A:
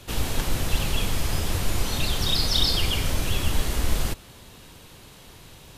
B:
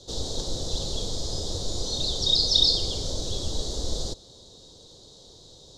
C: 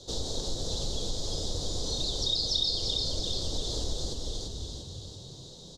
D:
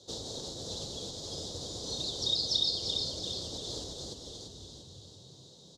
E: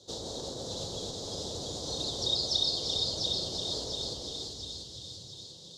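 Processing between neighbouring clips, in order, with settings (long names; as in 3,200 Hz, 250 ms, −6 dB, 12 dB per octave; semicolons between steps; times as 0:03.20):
drawn EQ curve 230 Hz 0 dB, 500 Hz +9 dB, 1,600 Hz −14 dB, 2,600 Hz −21 dB, 3,700 Hz +12 dB, 7,000 Hz +8 dB, 12,000 Hz −19 dB; level −7 dB
on a send: echo with shifted repeats 342 ms, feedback 53%, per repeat −36 Hz, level −6.5 dB; on the sum: downward compressor 2.5 to 1, threshold −29 dBFS, peak gain reduction 10 dB
high-pass filter 100 Hz 12 dB per octave; expander for the loud parts 1.5 to 1, over −40 dBFS
on a send: echo with a time of its own for lows and highs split 1,900 Hz, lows 129 ms, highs 694 ms, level −4.5 dB; on the sum: dynamic equaliser 790 Hz, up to +4 dB, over −50 dBFS, Q 0.85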